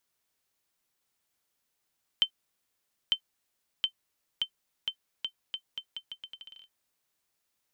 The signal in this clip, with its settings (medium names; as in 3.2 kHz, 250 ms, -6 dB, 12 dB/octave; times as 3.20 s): bouncing ball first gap 0.90 s, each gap 0.8, 3.09 kHz, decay 83 ms -13 dBFS